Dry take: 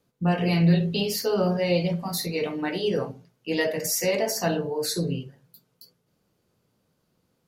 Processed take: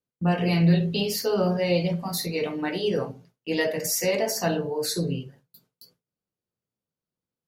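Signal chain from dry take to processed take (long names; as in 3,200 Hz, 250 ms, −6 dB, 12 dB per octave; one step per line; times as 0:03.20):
noise gate with hold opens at −43 dBFS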